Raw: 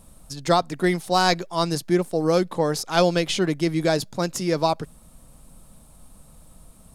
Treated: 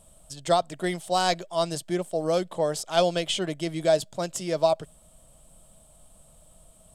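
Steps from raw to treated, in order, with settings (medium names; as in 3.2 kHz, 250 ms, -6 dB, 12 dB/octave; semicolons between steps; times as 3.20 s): graphic EQ with 31 bands 250 Hz -6 dB, 630 Hz +12 dB, 3.15 kHz +10 dB, 8 kHz +11 dB; trim -7.5 dB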